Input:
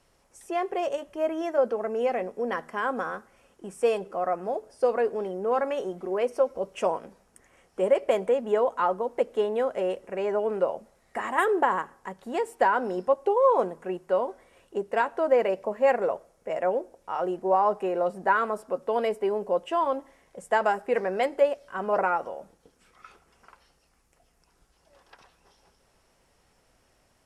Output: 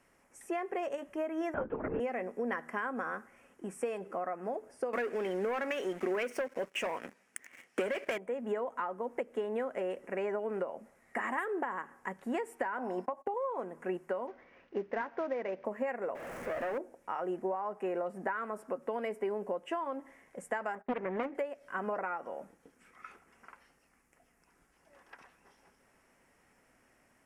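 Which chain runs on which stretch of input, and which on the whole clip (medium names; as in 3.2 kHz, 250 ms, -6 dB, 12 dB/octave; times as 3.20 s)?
1.54–2.00 s: comb of notches 600 Hz + LPC vocoder at 8 kHz whisper
4.93–8.18 s: frequency weighting D + waveshaping leveller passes 3
12.78–13.34 s: gate -44 dBFS, range -27 dB + high-order bell 830 Hz +9.5 dB 1 oct + compression 2.5:1, threshold -21 dBFS
14.27–15.65 s: CVSD coder 32 kbps + distance through air 170 m
16.15–16.78 s: jump at every zero crossing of -30 dBFS + valve stage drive 24 dB, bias 0.65 + treble shelf 4.1 kHz -12 dB
20.75–21.35 s: gate -44 dBFS, range -19 dB + low-pass 1.8 kHz 6 dB/octave + loudspeaker Doppler distortion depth 0.5 ms
whole clip: bass shelf 380 Hz -9 dB; compression 12:1, threshold -32 dBFS; graphic EQ 125/250/2000/4000 Hz +3/+10/+8/-11 dB; trim -2 dB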